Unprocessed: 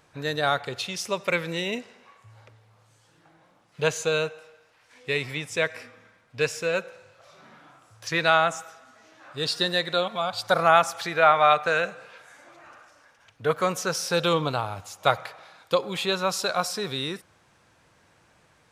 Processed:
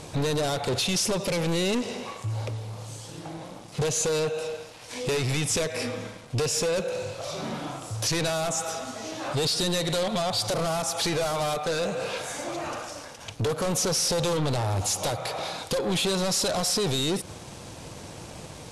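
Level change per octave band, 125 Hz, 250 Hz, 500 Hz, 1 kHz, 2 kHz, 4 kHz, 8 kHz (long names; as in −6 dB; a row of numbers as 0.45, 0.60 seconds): +6.5, +4.5, −1.0, −7.0, −7.0, +1.5, +8.5 decibels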